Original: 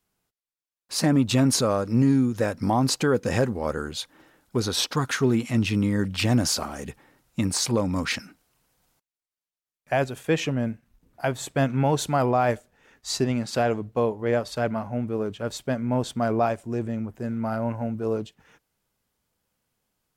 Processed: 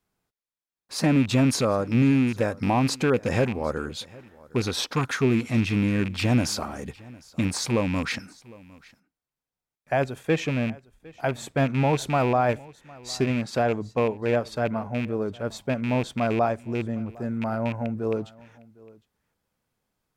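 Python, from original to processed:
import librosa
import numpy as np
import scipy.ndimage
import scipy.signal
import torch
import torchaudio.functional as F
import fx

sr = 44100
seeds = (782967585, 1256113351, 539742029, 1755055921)

p1 = fx.rattle_buzz(x, sr, strikes_db=-25.0, level_db=-21.0)
p2 = fx.high_shelf(p1, sr, hz=4000.0, db=-6.5)
p3 = fx.notch(p2, sr, hz=2900.0, q=19.0)
y = p3 + fx.echo_single(p3, sr, ms=757, db=-23.0, dry=0)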